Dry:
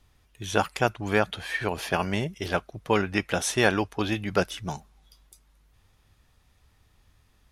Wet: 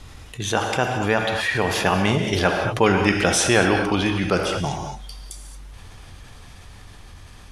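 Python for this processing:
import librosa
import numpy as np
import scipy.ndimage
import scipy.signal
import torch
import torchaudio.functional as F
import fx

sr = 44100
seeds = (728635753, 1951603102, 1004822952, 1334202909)

y = fx.doppler_pass(x, sr, speed_mps=15, closest_m=13.0, pass_at_s=2.78)
y = scipy.signal.sosfilt(scipy.signal.butter(4, 11000.0, 'lowpass', fs=sr, output='sos'), y)
y = fx.rev_gated(y, sr, seeds[0], gate_ms=250, shape='flat', drr_db=6.0)
y = fx.env_flatten(y, sr, amount_pct=50)
y = y * 10.0 ** (4.5 / 20.0)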